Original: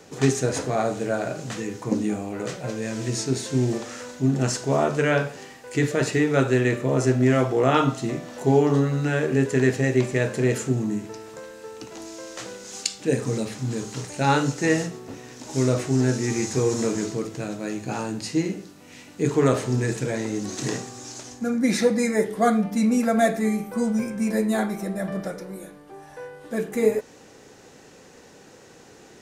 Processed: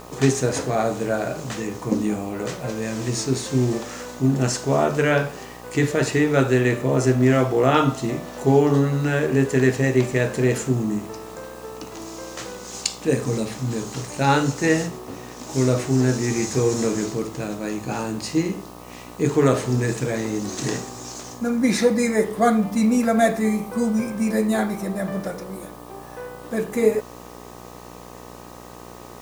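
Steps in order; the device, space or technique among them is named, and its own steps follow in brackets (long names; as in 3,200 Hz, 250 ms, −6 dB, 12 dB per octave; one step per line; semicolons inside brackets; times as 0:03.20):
video cassette with head-switching buzz (hum with harmonics 60 Hz, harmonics 21, −44 dBFS −1 dB per octave; white noise bed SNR 30 dB)
level +2 dB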